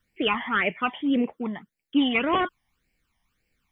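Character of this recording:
phaser sweep stages 12, 1.8 Hz, lowest notch 430–1,200 Hz

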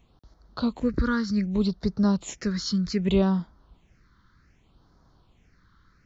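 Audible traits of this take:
phaser sweep stages 6, 0.65 Hz, lowest notch 670–2,600 Hz

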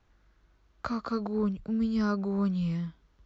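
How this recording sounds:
background noise floor −67 dBFS
spectral slope −6.5 dB per octave

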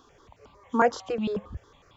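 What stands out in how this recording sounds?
notches that jump at a steady rate 11 Hz 580–1,700 Hz

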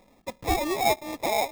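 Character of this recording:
aliases and images of a low sample rate 1,500 Hz, jitter 0%

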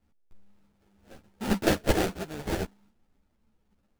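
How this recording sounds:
aliases and images of a low sample rate 1,100 Hz, jitter 20%
a shimmering, thickened sound

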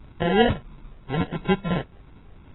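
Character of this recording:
a quantiser's noise floor 10 bits, dither none
phaser sweep stages 4, 2.9 Hz, lowest notch 310–1,100 Hz
aliases and images of a low sample rate 1,200 Hz, jitter 0%
AAC

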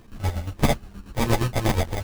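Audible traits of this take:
a buzz of ramps at a fixed pitch in blocks of 32 samples
chopped level 8.5 Hz, depth 65%, duty 45%
aliases and images of a low sample rate 1,400 Hz, jitter 0%
a shimmering, thickened sound

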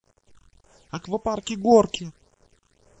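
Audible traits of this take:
sample-and-hold tremolo, depth 65%
a quantiser's noise floor 10 bits, dither none
phaser sweep stages 8, 1.8 Hz, lowest notch 580–4,200 Hz
WMA

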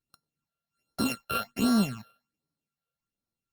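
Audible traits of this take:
a buzz of ramps at a fixed pitch in blocks of 32 samples
phaser sweep stages 8, 1.3 Hz, lowest notch 260–2,600 Hz
Opus

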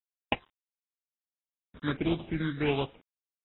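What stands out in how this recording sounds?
aliases and images of a low sample rate 1,900 Hz, jitter 20%
phaser sweep stages 8, 1.5 Hz, lowest notch 750–1,700 Hz
a quantiser's noise floor 10 bits, dither none
AAC

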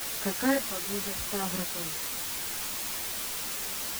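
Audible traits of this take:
sample-and-hold tremolo, depth 80%
a quantiser's noise floor 6 bits, dither triangular
a shimmering, thickened sound

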